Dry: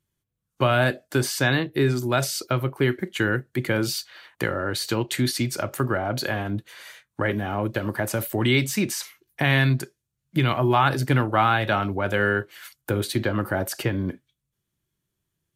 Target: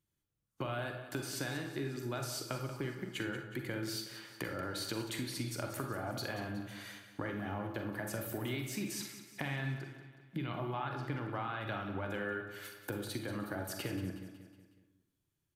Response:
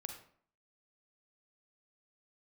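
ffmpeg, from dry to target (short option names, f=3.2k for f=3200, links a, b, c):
-filter_complex "[0:a]asettb=1/sr,asplit=3[a][b][c];[a]atrim=end=9.484[d];[b]atrim=start=9.48:end=11.61,asetpts=PTS-STARTPTS,afade=t=in:d=0.004:c=qsin,afade=t=out:st=2.126:d=0.004:c=qsin,acrossover=split=4600[e][f];[f]acompressor=threshold=-54dB:ratio=4:attack=1:release=60[g];[e][g]amix=inputs=2:normalize=0[h];[c]atrim=start=11.606[i];[d][h]acrossfade=d=0.004:c1=hsin:c2=qsin[j];[j][i]acrossfade=d=0.004:c1=qsin:c2=hsin,equalizer=f=290:w=6.7:g=5,acompressor=threshold=-30dB:ratio=6,aecho=1:1:184|368|552|736|920:0.251|0.126|0.0628|0.0314|0.0157[k];[1:a]atrim=start_sample=2205[l];[k][l]afir=irnorm=-1:irlink=0,volume=-3dB"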